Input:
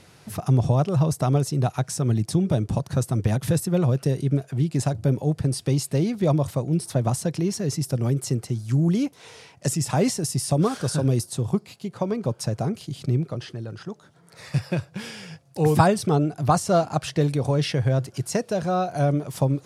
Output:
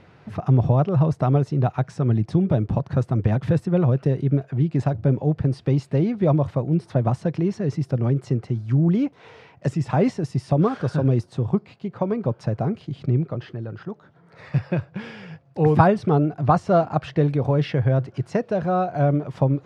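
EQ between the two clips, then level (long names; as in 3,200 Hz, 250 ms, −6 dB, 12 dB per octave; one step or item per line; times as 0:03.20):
low-pass filter 2,200 Hz 12 dB per octave
+2.0 dB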